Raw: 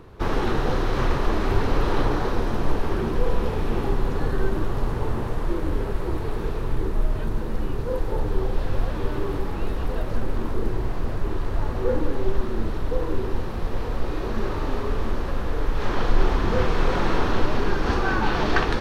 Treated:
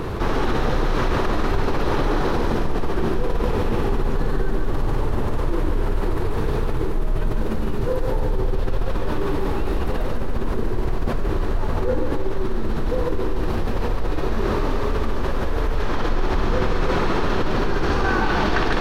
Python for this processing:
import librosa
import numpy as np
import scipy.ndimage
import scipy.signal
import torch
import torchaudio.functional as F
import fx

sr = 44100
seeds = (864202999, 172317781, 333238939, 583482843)

p1 = fx.hum_notches(x, sr, base_hz=50, count=2)
p2 = p1 + fx.echo_feedback(p1, sr, ms=142, feedback_pct=53, wet_db=-5.5, dry=0)
p3 = fx.env_flatten(p2, sr, amount_pct=70)
y = F.gain(torch.from_numpy(p3), -5.0).numpy()